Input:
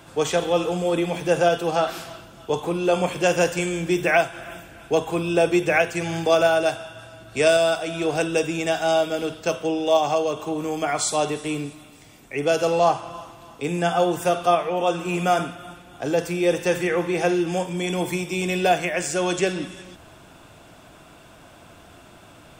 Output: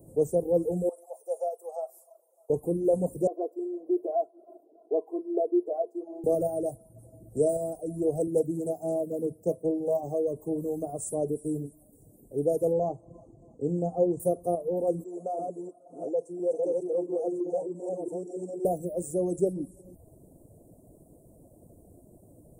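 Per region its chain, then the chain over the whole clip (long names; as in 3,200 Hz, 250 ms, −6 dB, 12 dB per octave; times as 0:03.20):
0:00.89–0:02.50: Butterworth high-pass 600 Hz + high-shelf EQ 8,500 Hz −8.5 dB
0:03.27–0:06.24: high-pass filter 410 Hz 24 dB per octave + high-frequency loss of the air 380 metres + comb filter 2.9 ms, depth 84%
0:08.27–0:10.04: high-pass filter 92 Hz 24 dB per octave + highs frequency-modulated by the lows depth 0.19 ms
0:12.73–0:14.20: Butterworth low-pass 7,200 Hz + notch filter 5,400 Hz, Q 6.2
0:15.04–0:18.65: delay that plays each chunk backwards 338 ms, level −1 dB + loudspeaker in its box 470–6,900 Hz, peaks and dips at 670 Hz +3 dB, 2,500 Hz −8 dB, 5,000 Hz −8 dB + saturating transformer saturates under 1,400 Hz
whole clip: elliptic band-stop filter 530–9,600 Hz, stop band 60 dB; reverb reduction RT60 0.62 s; level −1.5 dB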